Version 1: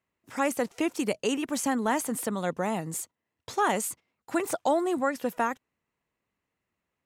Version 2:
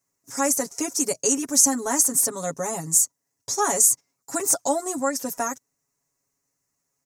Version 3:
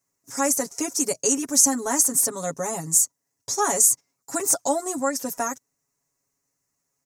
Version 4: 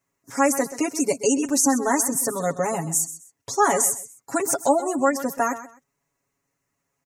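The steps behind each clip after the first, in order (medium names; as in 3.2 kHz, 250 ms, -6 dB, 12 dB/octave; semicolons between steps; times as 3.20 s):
resonant high shelf 4.4 kHz +12 dB, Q 3; comb 7.2 ms, depth 94%; trim -2 dB
no audible change
spectral gate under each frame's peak -30 dB strong; resonant high shelf 4 kHz -7.5 dB, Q 1.5; feedback delay 129 ms, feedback 22%, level -14 dB; trim +4.5 dB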